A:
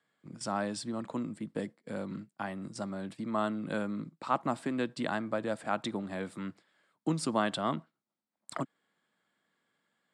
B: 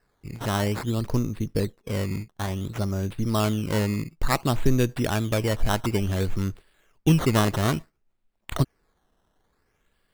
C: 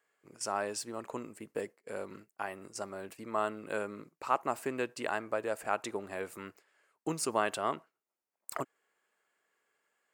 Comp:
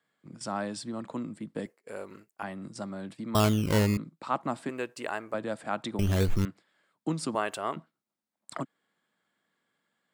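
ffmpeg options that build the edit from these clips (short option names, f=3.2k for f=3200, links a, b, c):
-filter_complex "[2:a]asplit=3[a][b][c];[1:a]asplit=2[d][e];[0:a]asplit=6[f][g][h][i][j][k];[f]atrim=end=1.662[l];[a]atrim=start=1.658:end=2.432[m];[g]atrim=start=2.428:end=3.352[n];[d]atrim=start=3.348:end=3.972[o];[h]atrim=start=3.968:end=4.692[p];[b]atrim=start=4.688:end=5.342[q];[i]atrim=start=5.338:end=5.992[r];[e]atrim=start=5.988:end=6.452[s];[j]atrim=start=6.448:end=7.352[t];[c]atrim=start=7.348:end=7.762[u];[k]atrim=start=7.758[v];[l][m]acrossfade=d=0.004:c1=hsin:c2=hsin[w];[w][n]acrossfade=d=0.004:c1=hsin:c2=hsin[x];[x][o]acrossfade=d=0.004:c1=hsin:c2=hsin[y];[y][p]acrossfade=d=0.004:c1=hsin:c2=hsin[z];[z][q]acrossfade=d=0.004:c1=hsin:c2=hsin[aa];[aa][r]acrossfade=d=0.004:c1=hsin:c2=hsin[ab];[ab][s]acrossfade=d=0.004:c1=hsin:c2=hsin[ac];[ac][t]acrossfade=d=0.004:c1=hsin:c2=hsin[ad];[ad][u]acrossfade=d=0.004:c1=hsin:c2=hsin[ae];[ae][v]acrossfade=d=0.004:c1=hsin:c2=hsin"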